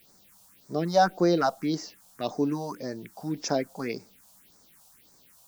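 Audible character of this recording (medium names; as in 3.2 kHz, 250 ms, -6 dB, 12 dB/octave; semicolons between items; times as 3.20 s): a quantiser's noise floor 10-bit, dither triangular; phasing stages 4, 1.8 Hz, lowest notch 320–2900 Hz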